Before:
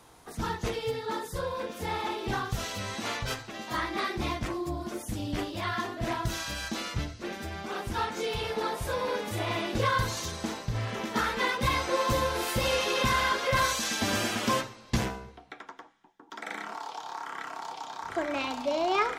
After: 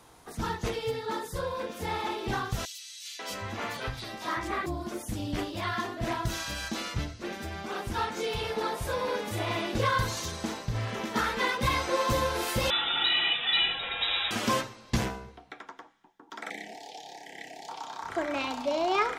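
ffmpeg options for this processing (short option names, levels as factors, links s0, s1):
-filter_complex "[0:a]asettb=1/sr,asplit=3[s0][s1][s2];[s0]atrim=end=2.654[s3];[s1]atrim=start=2.65:end=4.66,asetpts=PTS-STARTPTS,afade=t=in:d=0.004:c=qsin,afade=t=out:st=2.006:d=0.004:c=qsin,acrossover=split=190|3100[s4][s5][s6];[s5]adelay=540[s7];[s4]adelay=650[s8];[s8][s7][s6]amix=inputs=3:normalize=0,atrim=end_sample=88641[s9];[s2]atrim=start=4.656[s10];[s3][s9]acrossfade=d=0.004:c1=hsin:c2=qsin[s11];[s11][s10]acrossfade=d=0.004:c1=qsin:c2=hsin,asettb=1/sr,asplit=3[s12][s13][s14];[s12]atrim=end=12.704[s15];[s13]atrim=start=12.7:end=14.31,asetpts=PTS-STARTPTS,afade=t=in:d=0.004:c=qsin,afade=t=out:st=1.606:d=0.004:c=qsin,lowpass=f=3400:t=q:w=0.5098,lowpass=f=3400:t=q:w=0.6013,lowpass=f=3400:t=q:w=0.9,lowpass=f=3400:t=q:w=2.563,afreqshift=-4000[s16];[s14]atrim=start=14.306[s17];[s15][s16]acrossfade=d=0.004:c1=hsin:c2=qsin[s18];[s18][s17]acrossfade=d=0.004:c1=qsin:c2=hsin,asettb=1/sr,asplit=3[s19][s20][s21];[s19]atrim=end=16.504[s22];[s20]atrim=start=16.5:end=17.69,asetpts=PTS-STARTPTS,afade=t=in:d=0.004:c=qsin,afade=t=out:st=1.186:d=0.004:c=qsin,asuperstop=centerf=1200:order=12:qfactor=1.3[s23];[s21]atrim=start=17.686[s24];[s22][s23]acrossfade=d=0.004:c1=hsin:c2=qsin[s25];[s25][s24]acrossfade=d=0.004:c1=qsin:c2=hsin"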